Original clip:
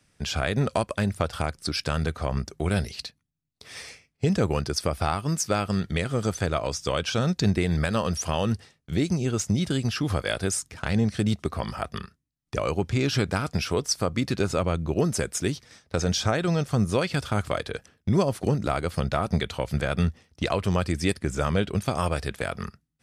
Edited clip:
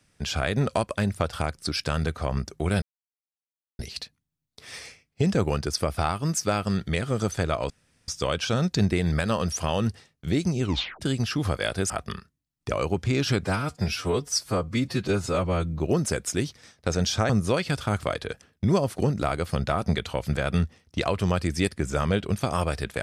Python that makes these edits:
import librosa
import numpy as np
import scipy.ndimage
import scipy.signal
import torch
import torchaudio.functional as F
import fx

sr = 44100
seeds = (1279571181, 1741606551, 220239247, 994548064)

y = fx.edit(x, sr, fx.insert_silence(at_s=2.82, length_s=0.97),
    fx.insert_room_tone(at_s=6.73, length_s=0.38),
    fx.tape_stop(start_s=9.27, length_s=0.39),
    fx.cut(start_s=10.55, length_s=1.21),
    fx.stretch_span(start_s=13.3, length_s=1.57, factor=1.5),
    fx.cut(start_s=16.37, length_s=0.37), tone=tone)